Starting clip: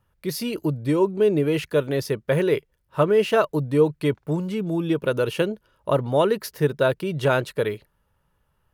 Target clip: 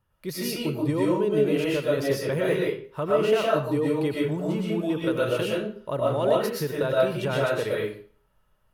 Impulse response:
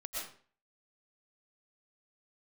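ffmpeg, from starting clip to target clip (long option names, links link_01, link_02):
-filter_complex "[0:a]alimiter=limit=-13.5dB:level=0:latency=1:release=71[link_01];[1:a]atrim=start_sample=2205[link_02];[link_01][link_02]afir=irnorm=-1:irlink=0"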